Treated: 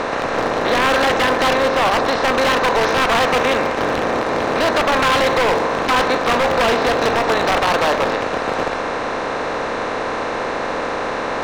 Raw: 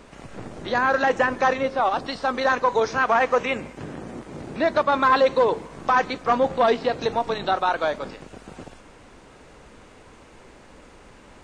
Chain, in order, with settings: per-bin compression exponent 0.4; wavefolder -11.5 dBFS; gain +1.5 dB

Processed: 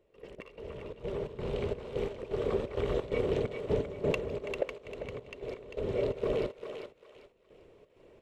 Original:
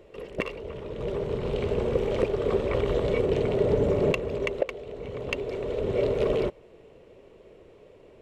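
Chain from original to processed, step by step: step gate "..x..xxx.xx.xxx" 130 bpm -12 dB; on a send: thinning echo 0.396 s, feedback 30%, high-pass 770 Hz, level -5 dB; on the sum: gain -5.5 dB

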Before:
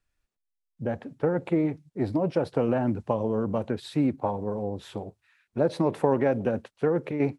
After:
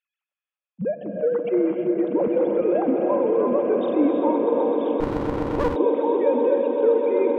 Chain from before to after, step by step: sine-wave speech; bell 1700 Hz -11 dB 0.57 oct; in parallel at -3 dB: negative-ratio compressor -28 dBFS; on the sum: swelling echo 0.128 s, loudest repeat 8, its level -12 dB; non-linear reverb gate 0.37 s rising, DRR 4 dB; 5–5.76 running maximum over 33 samples

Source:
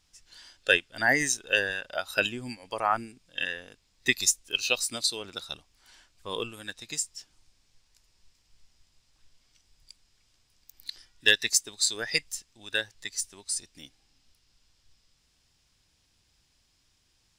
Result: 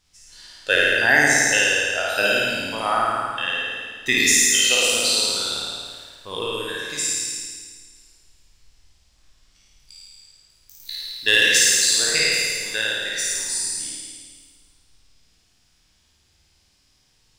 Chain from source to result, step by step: spectral trails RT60 1.34 s; flutter echo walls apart 9.3 m, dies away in 1.5 s

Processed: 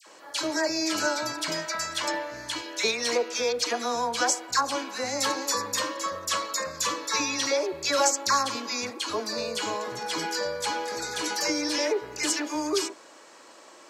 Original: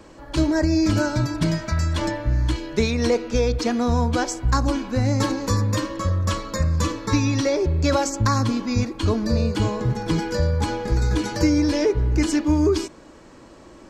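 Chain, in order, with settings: HPF 600 Hz 12 dB/oct; high shelf 4000 Hz +6.5 dB; dispersion lows, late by 67 ms, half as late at 1400 Hz

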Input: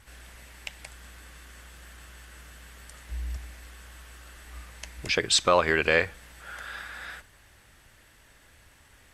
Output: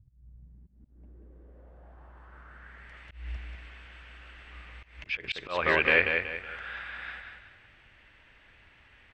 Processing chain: feedback echo 0.186 s, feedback 36%, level -5.5 dB; auto swell 0.18 s; low-pass sweep 130 Hz -> 2600 Hz, 0.25–3.09; gain -4.5 dB

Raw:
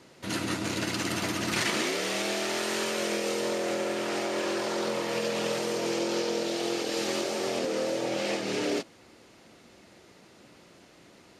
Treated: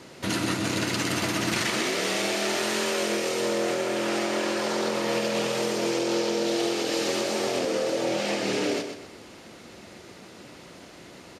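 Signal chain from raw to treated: compressor, threshold -32 dBFS, peak gain reduction 8 dB; on a send: feedback echo 0.126 s, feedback 35%, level -8 dB; on the sum: gain +8 dB

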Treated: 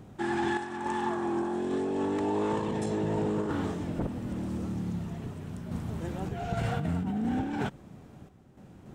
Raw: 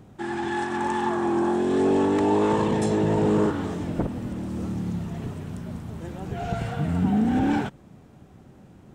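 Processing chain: random-step tremolo, depth 70%; negative-ratio compressor -29 dBFS, ratio -1

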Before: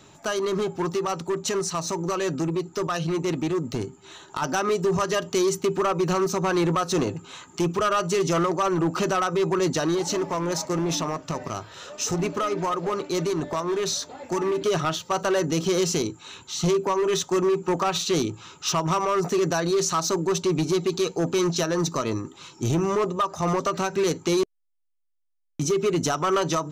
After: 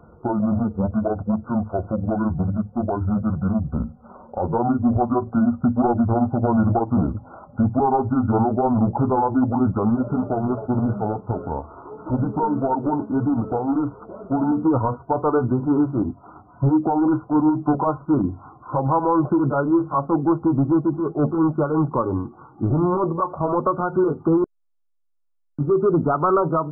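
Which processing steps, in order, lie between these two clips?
gliding pitch shift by -10.5 st ending unshifted; brick-wall FIR low-pass 1500 Hz; gain +5.5 dB

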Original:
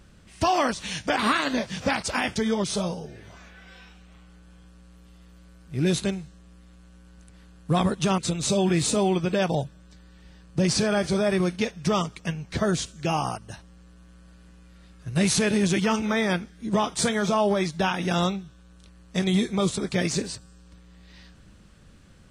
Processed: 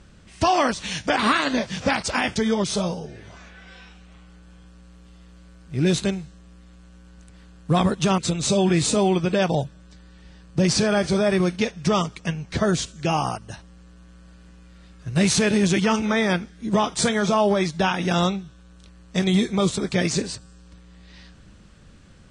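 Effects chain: LPF 9100 Hz 24 dB/oct; gain +3 dB

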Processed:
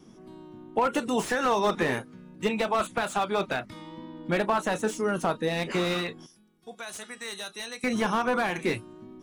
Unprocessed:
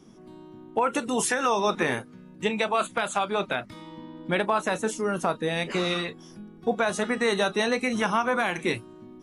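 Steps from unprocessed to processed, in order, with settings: wow and flutter 23 cents; 6.26–7.84 pre-emphasis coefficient 0.9; slew limiter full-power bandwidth 100 Hz

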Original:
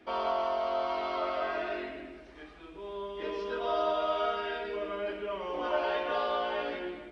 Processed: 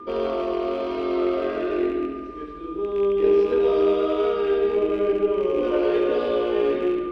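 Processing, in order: rattling part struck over -46 dBFS, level -32 dBFS; resonant low shelf 580 Hz +10.5 dB, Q 3; whine 1200 Hz -38 dBFS; vibrato 1.5 Hz 14 cents; added harmonics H 4 -30 dB, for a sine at -11 dBFS; on a send: analogue delay 70 ms, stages 2048, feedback 69%, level -7.5 dB

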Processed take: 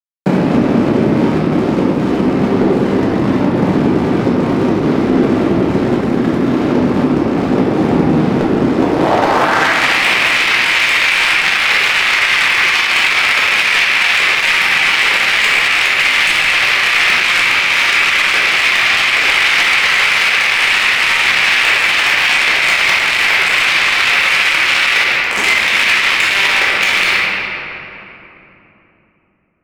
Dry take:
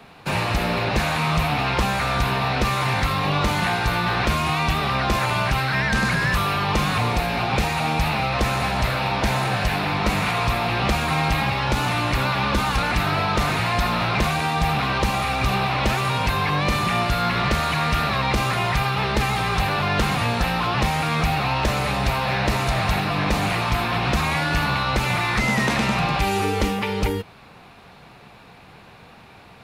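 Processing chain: rattling part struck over -27 dBFS, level -21 dBFS; 18.82–21.45 low shelf 76 Hz -7.5 dB; 25.06–25.43 spectral delete 350–6100 Hz; compressor 20:1, threshold -33 dBFS, peak gain reduction 17.5 dB; bit-crush 5-bit; band-pass sweep 270 Hz -> 2300 Hz, 8.64–9.77; wavefolder -32.5 dBFS; reverb RT60 3.3 s, pre-delay 5 ms, DRR -8 dB; maximiser +32 dB; gain -1 dB

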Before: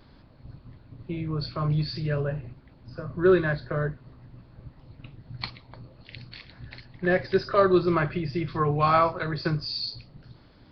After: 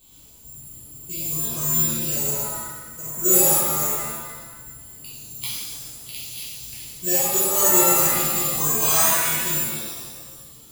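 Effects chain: resonant high shelf 2300 Hz +9 dB, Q 3; careless resampling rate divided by 6×, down filtered, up zero stuff; shimmer reverb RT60 1.2 s, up +7 st, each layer -2 dB, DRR -8.5 dB; gain -13 dB

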